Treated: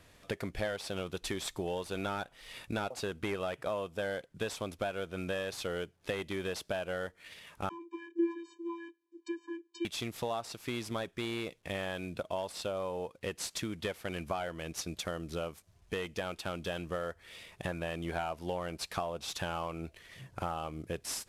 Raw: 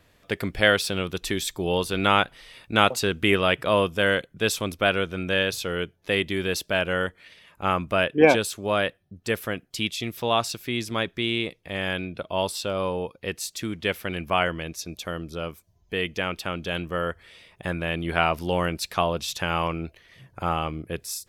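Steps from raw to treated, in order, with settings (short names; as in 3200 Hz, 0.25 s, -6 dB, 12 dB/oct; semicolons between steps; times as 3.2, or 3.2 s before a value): CVSD 64 kbps; dynamic EQ 680 Hz, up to +7 dB, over -37 dBFS, Q 1; compressor 6:1, threshold -34 dBFS, peak gain reduction 24.5 dB; 7.69–9.85 vocoder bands 32, square 338 Hz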